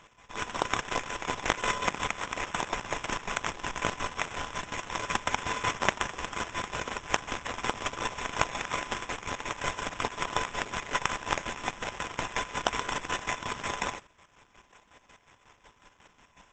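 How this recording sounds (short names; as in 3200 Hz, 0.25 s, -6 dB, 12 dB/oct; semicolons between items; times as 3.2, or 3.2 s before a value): a buzz of ramps at a fixed pitch in blocks of 8 samples; chopped level 5.5 Hz, depth 60%, duty 40%; aliases and images of a low sample rate 4500 Hz, jitter 0%; Opus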